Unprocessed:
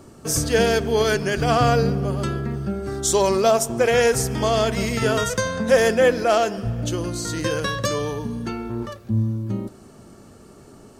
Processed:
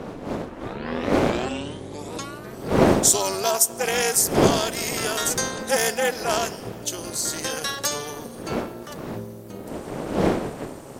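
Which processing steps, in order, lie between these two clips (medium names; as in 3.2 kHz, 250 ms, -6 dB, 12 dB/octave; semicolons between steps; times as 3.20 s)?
tape start-up on the opening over 2.69 s; wind noise 270 Hz -16 dBFS; AM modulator 290 Hz, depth 65%; RIAA curve recording; trim -1.5 dB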